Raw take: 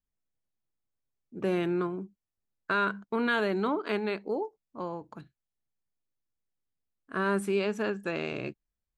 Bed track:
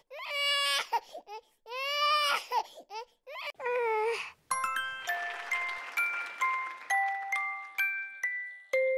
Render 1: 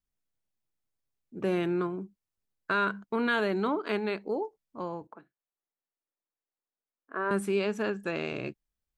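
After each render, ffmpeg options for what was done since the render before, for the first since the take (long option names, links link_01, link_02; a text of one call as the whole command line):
ffmpeg -i in.wav -filter_complex "[0:a]asettb=1/sr,asplit=3[link_01][link_02][link_03];[link_01]atrim=end=5.074[link_04];[link_02]atrim=start=5.07:end=7.31,asetpts=PTS-STARTPTS,afade=type=in:duration=0.004:curve=qsin,afade=type=out:start_time=2.236:duration=0.004:curve=qsin,acrossover=split=290 2100:gain=0.0708 1 0.0708[link_05][link_06][link_07];[link_05][link_06][link_07]amix=inputs=3:normalize=0[link_08];[link_03]atrim=start=7.306[link_09];[link_04][link_08]acrossfade=duration=0.004:curve1=hsin:curve2=qsin[link_10];[link_10][link_09]acrossfade=duration=0.004:curve1=qsin:curve2=hsin" out.wav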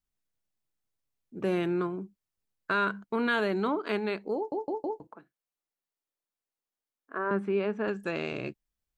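ffmpeg -i in.wav -filter_complex "[0:a]asettb=1/sr,asplit=3[link_01][link_02][link_03];[link_01]atrim=end=7.184[link_04];[link_02]atrim=start=7.18:end=7.88,asetpts=PTS-STARTPTS,afade=type=in:duration=0.004:curve=qsin,afade=type=out:start_time=0.696:duration=0.004:curve=qsin,highpass=120,lowpass=2000[link_05];[link_03]atrim=start=7.876[link_06];[link_04][link_05]acrossfade=duration=0.004:curve1=hsin:curve2=qsin[link_07];[link_07][link_06]acrossfade=duration=0.004:curve1=qsin:curve2=hsin,asplit=5[link_08][link_09][link_10][link_11][link_12];[link_08]atrim=end=4.522[link_13];[link_09]atrim=start=4.358:end=4.522[link_14];[link_10]atrim=start=4.358:end=4.522[link_15];[link_11]atrim=start=4.358:end=4.522[link_16];[link_12]atrim=start=4.998[link_17];[link_13][link_14]acrossfade=duration=0.004:curve1=hsin:curve2=hsin[link_18];[link_18][link_15]acrossfade=duration=0.004:curve1=hsin:curve2=hsin[link_19];[link_19][link_16]acrossfade=duration=0.004:curve1=hsin:curve2=hsin[link_20];[link_20][link_17]acrossfade=duration=0.004:curve1=hsin:curve2=hsin" out.wav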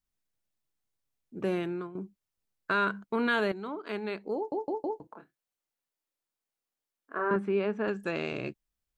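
ffmpeg -i in.wav -filter_complex "[0:a]asettb=1/sr,asplit=3[link_01][link_02][link_03];[link_01]atrim=end=5.124[link_04];[link_02]atrim=start=5.12:end=7.36,asetpts=PTS-STARTPTS,afade=type=in:duration=0.004:curve=qsin,afade=type=out:start_time=2.236:duration=0.004:curve=qsin,asplit=2[link_05][link_06];[link_06]adelay=28,volume=-5dB[link_07];[link_05][link_07]amix=inputs=2:normalize=0,atrim=end_sample=98784[link_08];[link_03]atrim=start=7.356[link_09];[link_04][link_08]acrossfade=duration=0.004:curve1=hsin:curve2=qsin[link_10];[link_10][link_09]acrossfade=duration=0.004:curve1=qsin:curve2=hsin,asplit=3[link_11][link_12][link_13];[link_11]atrim=end=1.95,asetpts=PTS-STARTPTS,afade=type=out:start_time=1.38:duration=0.57:silence=0.237137[link_14];[link_12]atrim=start=1.95:end=3.52,asetpts=PTS-STARTPTS,afade=type=in:duration=0.004:curve=hsin:silence=0.237137,afade=type=out:start_time=1.566:duration=0.004:curve=hsin:silence=0.237137[link_15];[link_13]atrim=start=3.52,asetpts=PTS-STARTPTS,afade=type=in:duration=1.02:silence=0.237137[link_16];[link_14][link_15][link_16]concat=n=3:v=0:a=1" out.wav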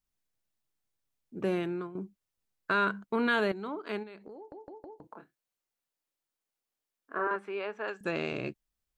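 ffmpeg -i in.wav -filter_complex "[0:a]asplit=3[link_01][link_02][link_03];[link_01]afade=type=out:start_time=4.02:duration=0.02[link_04];[link_02]acompressor=threshold=-43dB:ratio=16:attack=3.2:release=140:knee=1:detection=peak,afade=type=in:start_time=4.02:duration=0.02,afade=type=out:start_time=5.06:duration=0.02[link_05];[link_03]afade=type=in:start_time=5.06:duration=0.02[link_06];[link_04][link_05][link_06]amix=inputs=3:normalize=0,asettb=1/sr,asplit=3[link_07][link_08][link_09];[link_07]atrim=end=7.274[link_10];[link_08]atrim=start=7.27:end=8.01,asetpts=PTS-STARTPTS,afade=type=in:duration=0.004:curve=qsin,afade=type=out:start_time=0.736:duration=0.004:curve=qsin,highpass=610[link_11];[link_09]atrim=start=8.006[link_12];[link_10][link_11]acrossfade=duration=0.004:curve1=hsin:curve2=qsin[link_13];[link_13][link_12]acrossfade=duration=0.004:curve1=qsin:curve2=hsin" out.wav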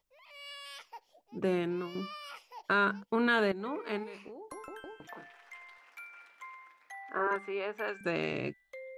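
ffmpeg -i in.wav -i bed.wav -filter_complex "[1:a]volume=-18dB[link_01];[0:a][link_01]amix=inputs=2:normalize=0" out.wav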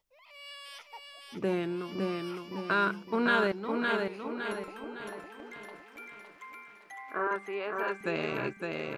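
ffmpeg -i in.wav -af "aecho=1:1:560|1120|1680|2240|2800|3360:0.668|0.294|0.129|0.0569|0.0251|0.011" out.wav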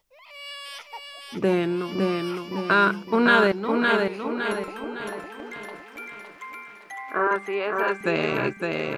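ffmpeg -i in.wav -af "volume=8.5dB" out.wav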